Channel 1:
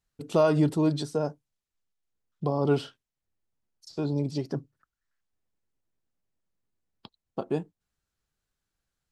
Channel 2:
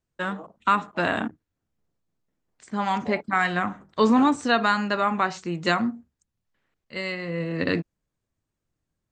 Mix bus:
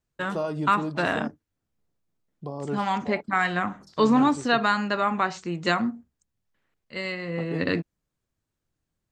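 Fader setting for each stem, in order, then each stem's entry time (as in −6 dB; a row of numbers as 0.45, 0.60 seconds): −7.5, −1.0 decibels; 0.00, 0.00 seconds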